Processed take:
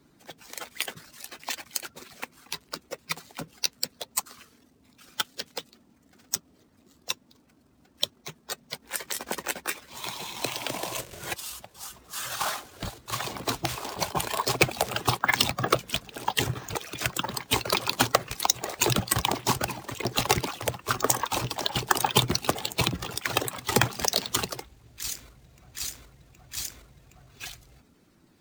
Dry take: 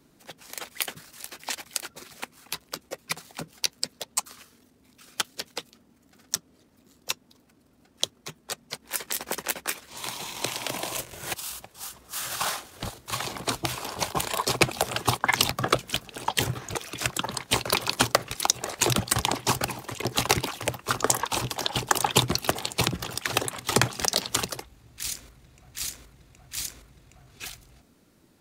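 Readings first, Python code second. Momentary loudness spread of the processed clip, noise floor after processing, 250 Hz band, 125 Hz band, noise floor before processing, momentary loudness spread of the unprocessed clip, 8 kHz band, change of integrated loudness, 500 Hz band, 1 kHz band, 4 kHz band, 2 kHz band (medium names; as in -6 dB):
15 LU, -62 dBFS, -0.5 dB, -0.5 dB, -62 dBFS, 15 LU, -2.0 dB, -0.5 dB, 0.0 dB, 0.0 dB, -1.0 dB, -0.5 dB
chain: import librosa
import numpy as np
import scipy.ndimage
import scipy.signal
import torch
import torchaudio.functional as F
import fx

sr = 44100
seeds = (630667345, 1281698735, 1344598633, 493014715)

y = fx.spec_quant(x, sr, step_db=15)
y = np.repeat(scipy.signal.resample_poly(y, 1, 2), 2)[:len(y)]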